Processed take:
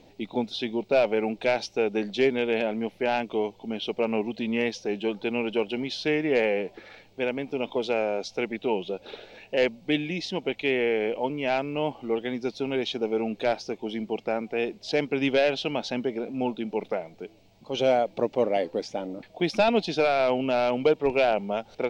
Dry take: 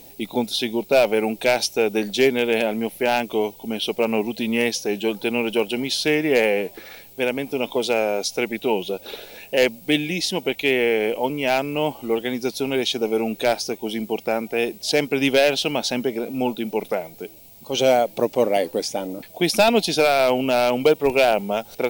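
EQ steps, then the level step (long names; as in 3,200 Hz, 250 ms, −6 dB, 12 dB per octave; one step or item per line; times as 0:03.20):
high-frequency loss of the air 170 metres
−4.5 dB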